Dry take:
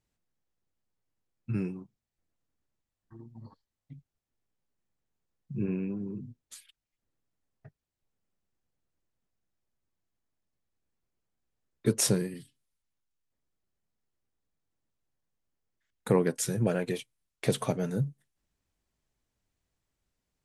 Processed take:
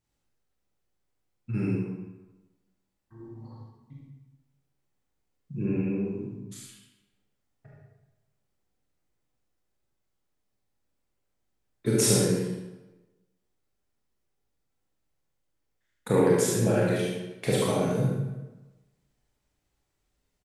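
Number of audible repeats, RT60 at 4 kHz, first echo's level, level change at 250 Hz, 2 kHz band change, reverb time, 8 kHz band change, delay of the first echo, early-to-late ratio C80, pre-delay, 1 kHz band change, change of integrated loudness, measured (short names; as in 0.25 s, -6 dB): 1, 0.80 s, -3.0 dB, +4.5 dB, +5.0 dB, 1.1 s, +4.0 dB, 73 ms, 1.0 dB, 24 ms, +5.5 dB, +4.0 dB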